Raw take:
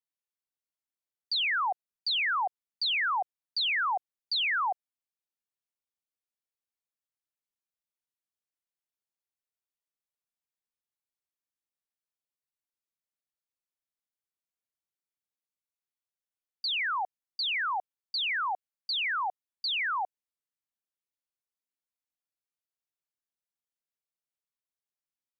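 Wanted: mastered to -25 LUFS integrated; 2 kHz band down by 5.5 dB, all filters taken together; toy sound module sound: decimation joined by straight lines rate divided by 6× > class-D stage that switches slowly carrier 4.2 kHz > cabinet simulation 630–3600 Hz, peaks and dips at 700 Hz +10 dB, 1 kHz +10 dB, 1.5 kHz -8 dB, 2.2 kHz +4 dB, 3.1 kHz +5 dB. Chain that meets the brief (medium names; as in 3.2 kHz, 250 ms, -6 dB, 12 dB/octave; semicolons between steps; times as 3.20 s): peaking EQ 2 kHz -8 dB; decimation joined by straight lines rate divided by 6×; class-D stage that switches slowly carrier 4.2 kHz; cabinet simulation 630–3600 Hz, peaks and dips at 700 Hz +10 dB, 1 kHz +10 dB, 1.5 kHz -8 dB, 2.2 kHz +4 dB, 3.1 kHz +5 dB; trim +7 dB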